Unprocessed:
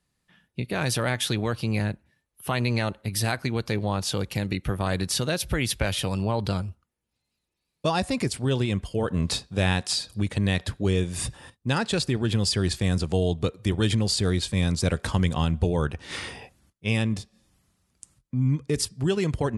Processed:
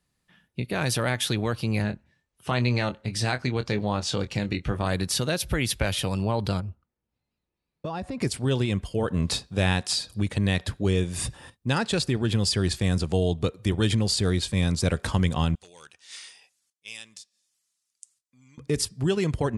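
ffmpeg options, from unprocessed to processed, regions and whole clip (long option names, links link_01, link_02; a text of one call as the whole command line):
ffmpeg -i in.wav -filter_complex "[0:a]asettb=1/sr,asplit=3[link_01][link_02][link_03];[link_01]atrim=end=1.824[link_04];[link_02]atrim=start=1.82:end=4.85,asetpts=PTS-STARTPTS,afade=type=in:duration=0.004:curve=qsin,afade=type=out:start_time=3.026:duration=0.004:curve=qsin,lowpass=frequency=8000:width=0.5412,lowpass=frequency=8000:width=1.3066,asplit=2[link_05][link_06];[link_06]adelay=24,volume=-10dB[link_07];[link_05][link_07]amix=inputs=2:normalize=0,atrim=end_sample=133623[link_08];[link_03]atrim=start=4.846[link_09];[link_04][link_08]acrossfade=duration=0.004:curve1=hsin:curve2=qsin[link_10];[link_10][link_09]acrossfade=duration=0.004:curve1=qsin:curve2=hsin,asettb=1/sr,asplit=3[link_11][link_12][link_13];[link_11]atrim=end=6.604[link_14];[link_12]atrim=start=6.6:end=8.22,asetpts=PTS-STARTPTS,afade=type=in:duration=0.004:curve=qsin,afade=type=out:start_time=1.616:duration=0.004:curve=qsin,lowpass=frequency=1400:poles=1,acompressor=threshold=-28dB:ratio=6:attack=3.2:release=140:knee=1:detection=peak[link_15];[link_13]atrim=start=8.216[link_16];[link_14][link_15]acrossfade=duration=0.004:curve1=hsin:curve2=qsin[link_17];[link_17][link_16]acrossfade=duration=0.004:curve1=qsin:curve2=hsin,asettb=1/sr,asplit=3[link_18][link_19][link_20];[link_18]atrim=end=15.554[link_21];[link_19]atrim=start=15.55:end=18.58,asetpts=PTS-STARTPTS,afade=type=in:duration=0.004:curve=qsin,afade=type=out:start_time=3.026:duration=0.004:curve=qsin,asoftclip=type=hard:threshold=-14dB,bandpass=frequency=6900:width_type=q:width=1.2[link_22];[link_20]atrim=start=18.576[link_23];[link_21][link_22]acrossfade=duration=0.004:curve1=hsin:curve2=qsin[link_24];[link_24][link_23]acrossfade=duration=0.004:curve1=qsin:curve2=hsin" out.wav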